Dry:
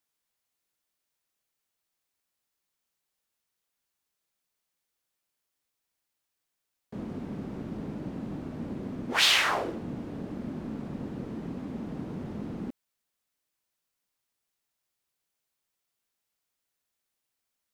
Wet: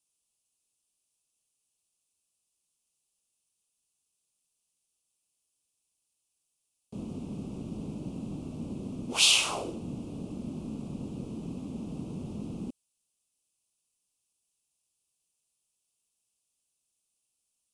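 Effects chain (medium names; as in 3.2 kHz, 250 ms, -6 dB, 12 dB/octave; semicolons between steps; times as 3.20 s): FFT filter 160 Hz 0 dB, 1.2 kHz -7 dB, 1.8 kHz -26 dB, 2.6 kHz +2 dB, 4 kHz -1 dB, 9.8 kHz +11 dB, 14 kHz -14 dB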